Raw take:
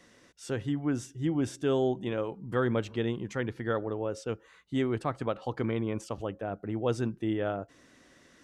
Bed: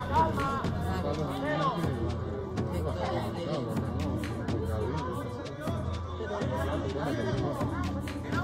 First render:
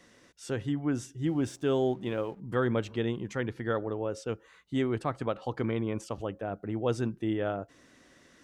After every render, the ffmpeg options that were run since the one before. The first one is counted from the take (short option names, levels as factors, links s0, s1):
-filter_complex "[0:a]asettb=1/sr,asplit=3[s0][s1][s2];[s0]atrim=end=1.264[s3];[s1]atrim=start=1.26:end=2.4,asetpts=PTS-STARTPTS,afade=t=in:d=0.004:c=qsin,afade=t=out:st=1.136:d=0.004:c=qsin,aeval=exprs='sgn(val(0))*max(abs(val(0))-0.00112,0)':c=same[s4];[s2]atrim=start=2.396[s5];[s3][s4]acrossfade=d=0.004:c1=hsin:c2=qsin[s6];[s6][s5]acrossfade=d=0.004:c1=qsin:c2=hsin"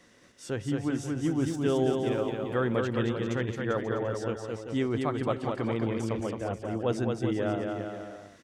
-af "aecho=1:1:220|396|536.8|649.4|739.6:0.631|0.398|0.251|0.158|0.1"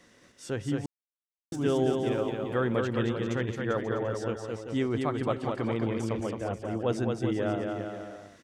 -filter_complex "[0:a]asplit=3[s0][s1][s2];[s0]atrim=end=0.86,asetpts=PTS-STARTPTS,afade=t=out:st=0.856:d=0.004:c=hsin[s3];[s1]atrim=start=0.86:end=1.52,asetpts=PTS-STARTPTS,volume=0[s4];[s2]atrim=start=1.52,asetpts=PTS-STARTPTS,afade=t=in:d=0.004:c=hsin[s5];[s3][s4][s5]concat=n=3:v=0:a=1"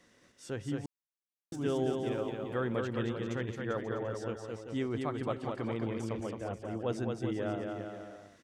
-af "volume=0.531"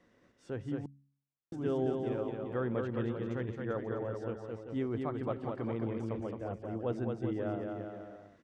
-af "lowpass=f=1200:p=1,bandreject=f=69.77:t=h:w=4,bandreject=f=139.54:t=h:w=4,bandreject=f=209.31:t=h:w=4,bandreject=f=279.08:t=h:w=4"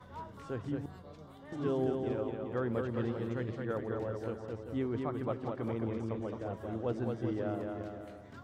-filter_complex "[1:a]volume=0.1[s0];[0:a][s0]amix=inputs=2:normalize=0"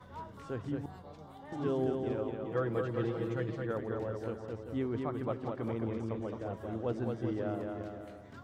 -filter_complex "[0:a]asettb=1/sr,asplit=3[s0][s1][s2];[s0]atrim=end=0.834[s3];[s1]atrim=start=0.83:end=1.65,asetpts=PTS-STARTPTS,afade=t=in:d=0.004:c=qsin,afade=t=out:st=0.816:d=0.004:c=qsin,equalizer=f=820:t=o:w=0.26:g=11.5[s4];[s2]atrim=start=1.646[s5];[s3][s4]acrossfade=d=0.004:c1=hsin:c2=qsin[s6];[s6][s5]acrossfade=d=0.004:c1=qsin:c2=hsin,asettb=1/sr,asplit=3[s7][s8][s9];[s7]atrim=end=2.444[s10];[s8]atrim=start=2.44:end=3.67,asetpts=PTS-STARTPTS,afade=t=in:d=0.004:c=qsin,afade=t=out:st=1.226:d=0.004:c=qsin,aecho=1:1:6.2:0.65,atrim=end_sample=54243[s11];[s9]atrim=start=3.666[s12];[s10][s11]acrossfade=d=0.004:c1=hsin:c2=qsin[s13];[s13][s12]acrossfade=d=0.004:c1=qsin:c2=hsin"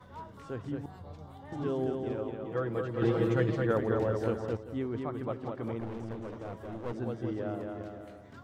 -filter_complex "[0:a]asettb=1/sr,asplit=3[s0][s1][s2];[s0]atrim=end=1.004[s3];[s1]atrim=start=1:end=1.63,asetpts=PTS-STARTPTS,afade=t=in:d=0.004:c=qsin,afade=t=out:st=0.626:d=0.004:c=qsin,equalizer=f=94:w=1.5:g=11.5[s4];[s2]atrim=start=1.626[s5];[s3][s4]acrossfade=d=0.004:c1=hsin:c2=qsin[s6];[s6][s5]acrossfade=d=0.004:c1=qsin:c2=hsin,asettb=1/sr,asplit=3[s7][s8][s9];[s7]atrim=end=5.804[s10];[s8]atrim=start=5.8:end=6.93,asetpts=PTS-STARTPTS,afade=t=in:d=0.004:c=qsin,afade=t=out:st=1.126:d=0.004:c=qsin,aeval=exprs='clip(val(0),-1,0.0112)':c=same[s11];[s9]atrim=start=6.926[s12];[s10][s11]acrossfade=d=0.004:c1=hsin:c2=qsin[s13];[s13][s12]acrossfade=d=0.004:c1=qsin:c2=hsin,asplit=3[s14][s15][s16];[s14]atrim=end=3.022[s17];[s15]atrim=start=3.018:end=4.572,asetpts=PTS-STARTPTS,volume=2.37[s18];[s16]atrim=start=4.568[s19];[s17][s18]acrossfade=d=0.004:c1=hsin:c2=hsin[s20];[s20][s19]acrossfade=d=0.004:c1=hsin:c2=hsin"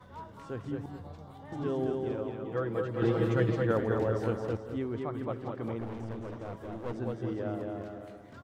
-af "aecho=1:1:210:0.316"